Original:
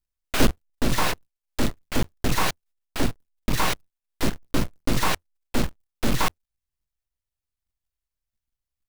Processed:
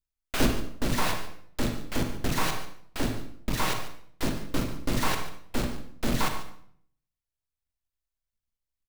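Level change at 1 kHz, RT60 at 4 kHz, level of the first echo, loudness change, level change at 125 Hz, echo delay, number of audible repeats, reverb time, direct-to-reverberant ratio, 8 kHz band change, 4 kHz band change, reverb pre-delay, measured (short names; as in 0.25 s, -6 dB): -4.0 dB, 0.50 s, -14.5 dB, -4.0 dB, -3.5 dB, 0.144 s, 1, 0.60 s, 5.0 dB, -4.0 dB, -4.0 dB, 36 ms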